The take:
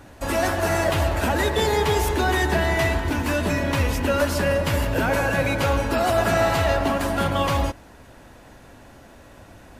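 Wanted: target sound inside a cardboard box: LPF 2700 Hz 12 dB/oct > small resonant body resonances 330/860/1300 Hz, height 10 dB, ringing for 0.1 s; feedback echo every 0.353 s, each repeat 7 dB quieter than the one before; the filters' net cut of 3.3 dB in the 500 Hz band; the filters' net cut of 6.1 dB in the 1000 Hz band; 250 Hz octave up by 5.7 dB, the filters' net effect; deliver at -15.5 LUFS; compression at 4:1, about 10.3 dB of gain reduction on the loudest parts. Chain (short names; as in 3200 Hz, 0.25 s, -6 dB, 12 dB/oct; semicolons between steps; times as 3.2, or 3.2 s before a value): bell 250 Hz +8.5 dB; bell 500 Hz -4 dB; bell 1000 Hz -7.5 dB; compressor 4:1, threshold -29 dBFS; LPF 2700 Hz 12 dB/oct; feedback echo 0.353 s, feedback 45%, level -7 dB; small resonant body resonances 330/860/1300 Hz, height 10 dB, ringing for 0.1 s; gain +13.5 dB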